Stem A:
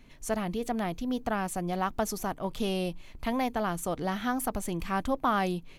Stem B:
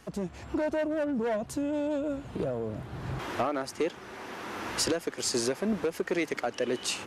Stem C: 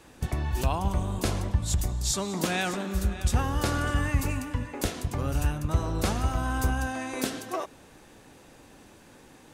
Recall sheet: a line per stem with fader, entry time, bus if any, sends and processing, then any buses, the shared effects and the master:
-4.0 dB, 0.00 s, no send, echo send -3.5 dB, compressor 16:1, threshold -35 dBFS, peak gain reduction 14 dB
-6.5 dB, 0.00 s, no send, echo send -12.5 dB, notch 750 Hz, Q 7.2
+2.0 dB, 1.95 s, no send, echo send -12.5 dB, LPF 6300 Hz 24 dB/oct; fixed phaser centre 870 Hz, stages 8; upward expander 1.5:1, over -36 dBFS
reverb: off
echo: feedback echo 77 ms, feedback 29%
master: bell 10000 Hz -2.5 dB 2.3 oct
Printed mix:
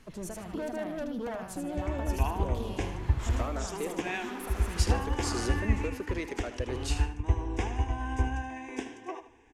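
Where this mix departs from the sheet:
stem C: entry 1.95 s -> 1.55 s; master: missing bell 10000 Hz -2.5 dB 2.3 oct

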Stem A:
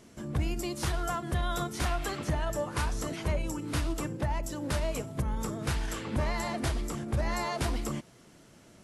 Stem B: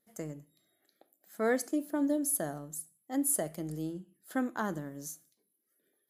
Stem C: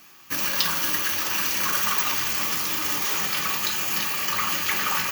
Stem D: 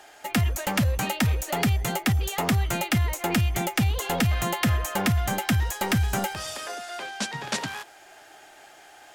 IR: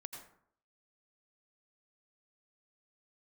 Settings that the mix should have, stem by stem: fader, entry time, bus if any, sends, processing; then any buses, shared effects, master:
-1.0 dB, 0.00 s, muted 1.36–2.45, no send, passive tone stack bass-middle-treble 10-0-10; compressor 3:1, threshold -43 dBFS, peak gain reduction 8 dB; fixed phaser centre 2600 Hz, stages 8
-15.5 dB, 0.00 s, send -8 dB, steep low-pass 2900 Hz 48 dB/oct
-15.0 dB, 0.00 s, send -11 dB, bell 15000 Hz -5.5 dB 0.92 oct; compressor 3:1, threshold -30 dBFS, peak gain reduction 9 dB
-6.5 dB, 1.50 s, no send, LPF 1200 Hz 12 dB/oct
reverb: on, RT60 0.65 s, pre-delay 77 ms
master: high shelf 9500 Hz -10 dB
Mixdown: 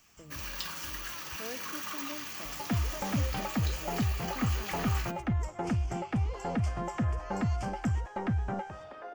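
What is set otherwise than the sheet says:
stem C: missing compressor 3:1, threshold -30 dBFS, peak gain reduction 9 dB; stem D: entry 1.50 s -> 2.35 s; master: missing high shelf 9500 Hz -10 dB

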